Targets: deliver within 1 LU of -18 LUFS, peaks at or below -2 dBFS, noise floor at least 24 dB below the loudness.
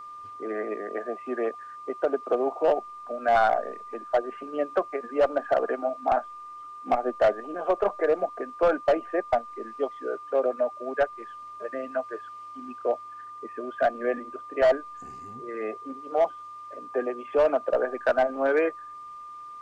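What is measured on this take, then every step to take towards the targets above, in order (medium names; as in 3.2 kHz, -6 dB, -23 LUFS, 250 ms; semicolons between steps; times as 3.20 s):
steady tone 1.2 kHz; tone level -39 dBFS; loudness -27.5 LUFS; peak level -14.0 dBFS; loudness target -18.0 LUFS
-> band-stop 1.2 kHz, Q 30; trim +9.5 dB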